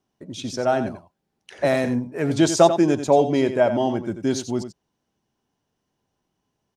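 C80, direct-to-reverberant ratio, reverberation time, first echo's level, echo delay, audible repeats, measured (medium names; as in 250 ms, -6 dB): no reverb, no reverb, no reverb, -10.5 dB, 89 ms, 1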